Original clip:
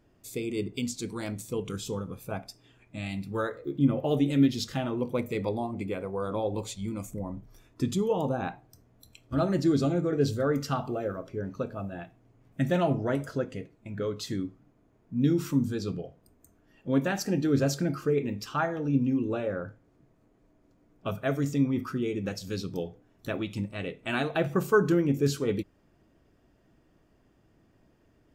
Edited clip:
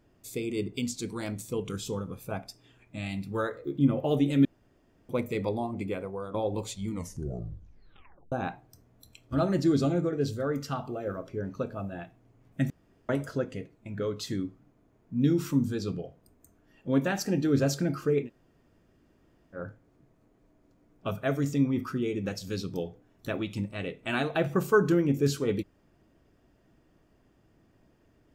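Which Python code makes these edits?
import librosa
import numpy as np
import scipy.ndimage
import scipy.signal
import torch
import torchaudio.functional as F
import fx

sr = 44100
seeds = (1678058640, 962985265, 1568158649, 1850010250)

y = fx.edit(x, sr, fx.room_tone_fill(start_s=4.45, length_s=0.64),
    fx.fade_out_to(start_s=5.95, length_s=0.39, floor_db=-9.0),
    fx.tape_stop(start_s=6.86, length_s=1.46),
    fx.clip_gain(start_s=10.09, length_s=0.98, db=-3.5),
    fx.room_tone_fill(start_s=12.7, length_s=0.39),
    fx.room_tone_fill(start_s=18.25, length_s=1.32, crossfade_s=0.1), tone=tone)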